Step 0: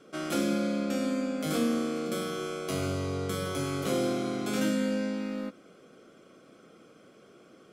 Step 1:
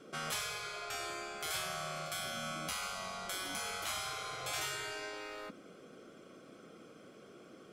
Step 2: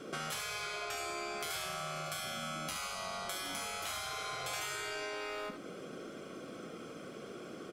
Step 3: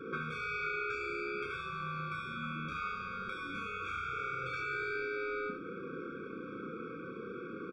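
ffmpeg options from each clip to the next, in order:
-af "afftfilt=real='re*lt(hypot(re,im),0.0562)':imag='im*lt(hypot(re,im),0.0562)':win_size=1024:overlap=0.75"
-af "acompressor=threshold=0.00447:ratio=4,aecho=1:1:72:0.422,volume=2.51"
-filter_complex "[0:a]lowpass=f=1900:t=q:w=1.5,asplit=2[s0][s1];[s1]adelay=31,volume=0.668[s2];[s0][s2]amix=inputs=2:normalize=0,afftfilt=real='re*eq(mod(floor(b*sr/1024/540),2),0)':imag='im*eq(mod(floor(b*sr/1024/540),2),0)':win_size=1024:overlap=0.75,volume=1.26"

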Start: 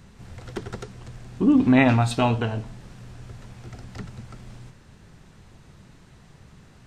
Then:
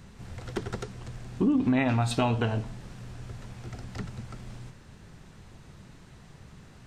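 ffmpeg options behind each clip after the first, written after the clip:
-af "acompressor=threshold=0.0891:ratio=6"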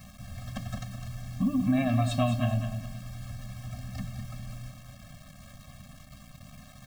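-af "acrusher=bits=7:mix=0:aa=0.000001,aecho=1:1:206|412|618|824:0.376|0.12|0.0385|0.0123,afftfilt=real='re*eq(mod(floor(b*sr/1024/260),2),0)':imag='im*eq(mod(floor(b*sr/1024/260),2),0)':win_size=1024:overlap=0.75"

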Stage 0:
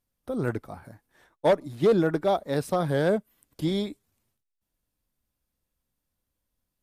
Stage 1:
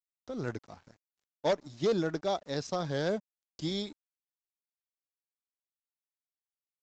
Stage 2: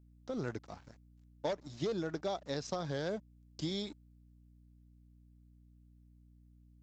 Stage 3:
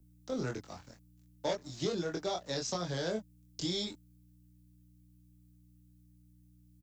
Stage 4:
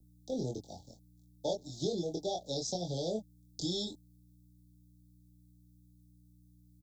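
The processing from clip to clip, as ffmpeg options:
-af "equalizer=f=5700:w=1:g=14,aresample=16000,aeval=exprs='sgn(val(0))*max(abs(val(0))-0.00376,0)':c=same,aresample=44100,volume=0.422"
-af "acompressor=threshold=0.02:ratio=6,aeval=exprs='val(0)+0.000891*(sin(2*PI*60*n/s)+sin(2*PI*2*60*n/s)/2+sin(2*PI*3*60*n/s)/3+sin(2*PI*4*60*n/s)/4+sin(2*PI*5*60*n/s)/5)':c=same,volume=1.12"
-filter_complex "[0:a]asplit=2[s0][s1];[s1]adelay=23,volume=0.708[s2];[s0][s2]amix=inputs=2:normalize=0,acrossover=split=110|420|1300[s3][s4][s5][s6];[s6]crystalizer=i=2:c=0[s7];[s3][s4][s5][s7]amix=inputs=4:normalize=0"
-af "asuperstop=centerf=1700:order=20:qfactor=0.67"

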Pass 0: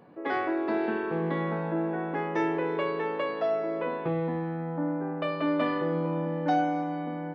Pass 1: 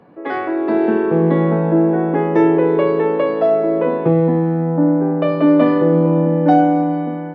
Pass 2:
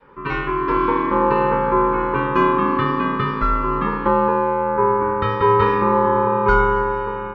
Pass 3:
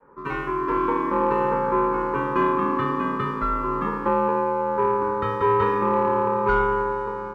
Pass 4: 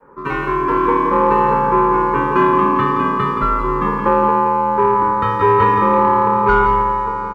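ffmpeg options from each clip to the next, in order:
-filter_complex "[0:a]lowpass=f=3500:p=1,acrossover=split=100|660[s0][s1][s2];[s1]dynaudnorm=f=490:g=3:m=3.16[s3];[s0][s3][s2]amix=inputs=3:normalize=0,volume=2.11"
-af "adynamicequalizer=threshold=0.0631:dfrequency=480:dqfactor=0.92:tfrequency=480:tqfactor=0.92:attack=5:release=100:ratio=0.375:range=2:mode=cutabove:tftype=bell,aeval=exprs='val(0)*sin(2*PI*700*n/s)':c=same,volume=1.26"
-filter_complex "[0:a]acrossover=split=170|1700[s0][s1][s2];[s1]acontrast=47[s3];[s2]aeval=exprs='sgn(val(0))*max(abs(val(0))-0.00335,0)':c=same[s4];[s0][s3][s4]amix=inputs=3:normalize=0,volume=0.355"
-af "aecho=1:1:171:0.447,volume=2.24"

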